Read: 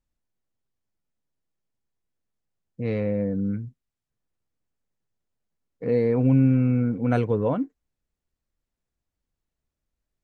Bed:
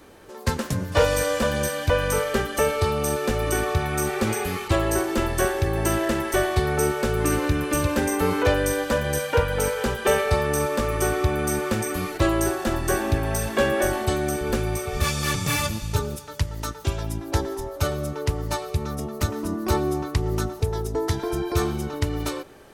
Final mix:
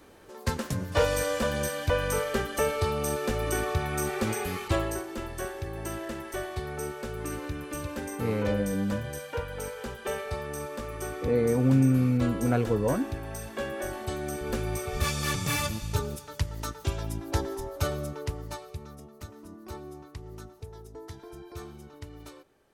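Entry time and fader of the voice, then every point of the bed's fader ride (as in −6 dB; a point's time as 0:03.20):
5.40 s, −3.0 dB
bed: 0:04.78 −5 dB
0:05.03 −12.5 dB
0:13.75 −12.5 dB
0:14.81 −4.5 dB
0:17.94 −4.5 dB
0:19.15 −18.5 dB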